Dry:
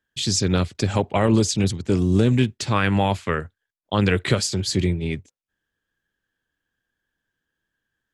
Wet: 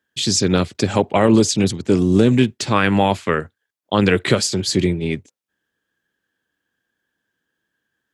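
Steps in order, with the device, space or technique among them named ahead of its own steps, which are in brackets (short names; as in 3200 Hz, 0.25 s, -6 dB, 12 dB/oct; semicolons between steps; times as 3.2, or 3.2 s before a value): filter by subtraction (in parallel: LPF 270 Hz 12 dB/oct + phase invert); on the sum: gain +4 dB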